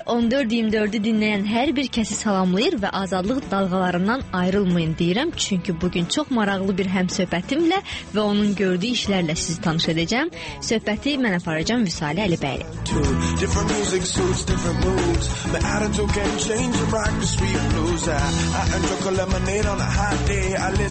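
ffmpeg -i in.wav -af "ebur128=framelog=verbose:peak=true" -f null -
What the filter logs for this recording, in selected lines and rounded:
Integrated loudness:
  I:         -21.7 LUFS
  Threshold: -31.7 LUFS
Loudness range:
  LRA:         0.8 LU
  Threshold: -41.7 LUFS
  LRA low:   -22.2 LUFS
  LRA high:  -21.4 LUFS
True peak:
  Peak:      -10.0 dBFS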